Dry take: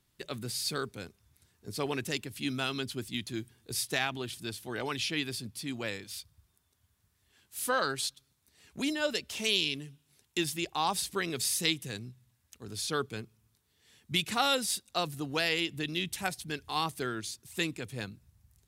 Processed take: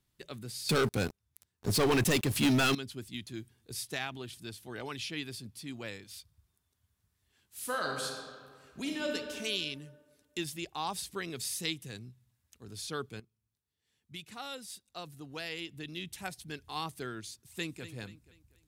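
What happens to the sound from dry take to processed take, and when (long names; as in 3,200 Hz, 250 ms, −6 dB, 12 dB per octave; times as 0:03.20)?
0:00.69–0:02.75: leveller curve on the samples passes 5
0:07.57–0:09.15: thrown reverb, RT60 1.9 s, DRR 1.5 dB
0:13.20–0:16.52: fade in quadratic, from −12 dB
0:17.39–0:17.84: delay throw 240 ms, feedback 40%, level −13 dB
whole clip: low-shelf EQ 180 Hz +3.5 dB; level −6 dB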